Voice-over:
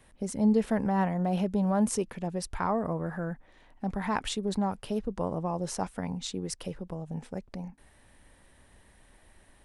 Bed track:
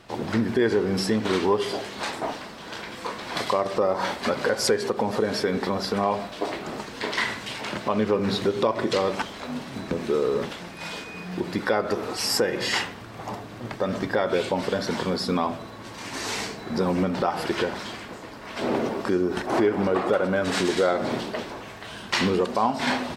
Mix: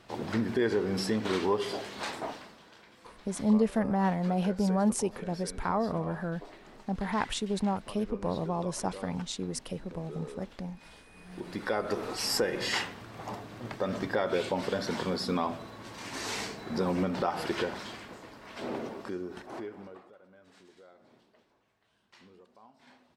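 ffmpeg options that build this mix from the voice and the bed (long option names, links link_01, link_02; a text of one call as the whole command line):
ffmpeg -i stem1.wav -i stem2.wav -filter_complex "[0:a]adelay=3050,volume=-0.5dB[link_01];[1:a]volume=8.5dB,afade=type=out:start_time=2.14:duration=0.59:silence=0.199526,afade=type=in:start_time=11.11:duration=0.84:silence=0.188365,afade=type=out:start_time=17.48:duration=2.63:silence=0.0354813[link_02];[link_01][link_02]amix=inputs=2:normalize=0" out.wav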